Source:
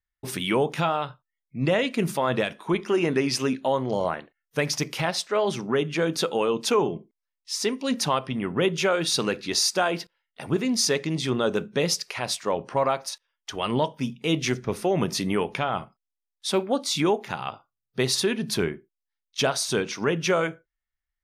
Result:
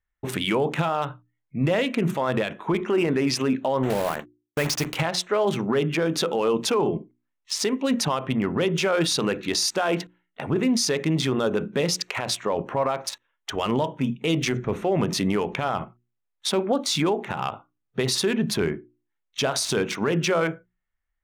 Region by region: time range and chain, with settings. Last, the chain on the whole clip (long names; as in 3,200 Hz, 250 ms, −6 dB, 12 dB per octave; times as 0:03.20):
0:03.83–0:04.96: one scale factor per block 3 bits + noise gate −45 dBFS, range −41 dB
whole clip: adaptive Wiener filter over 9 samples; mains-hum notches 60/120/180/240/300/360 Hz; brickwall limiter −21 dBFS; level +6.5 dB